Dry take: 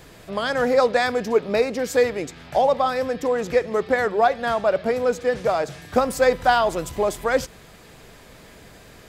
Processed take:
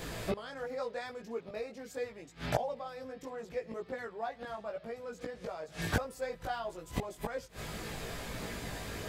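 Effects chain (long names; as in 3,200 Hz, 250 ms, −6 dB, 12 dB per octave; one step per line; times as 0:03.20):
gate with flip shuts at −22 dBFS, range −25 dB
multi-voice chorus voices 2, 0.77 Hz, delay 18 ms, depth 1.2 ms
level +8 dB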